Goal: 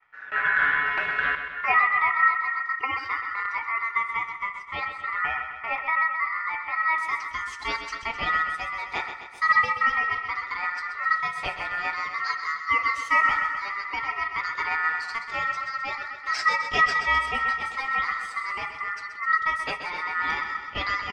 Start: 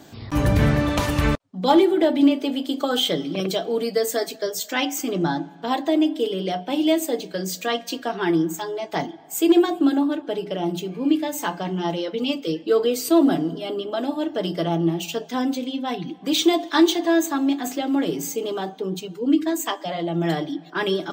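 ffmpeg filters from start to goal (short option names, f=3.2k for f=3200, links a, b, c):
-af "asetnsamples=n=441:p=0,asendcmd='6.98 lowpass f 3400',lowpass=1.1k,agate=range=-33dB:threshold=-39dB:ratio=3:detection=peak,aeval=exprs='val(0)*sin(2*PI*1600*n/s)':c=same,aecho=1:1:129|258|387|516|645|774|903:0.355|0.213|0.128|0.0766|0.046|0.0276|0.0166,volume=-2dB"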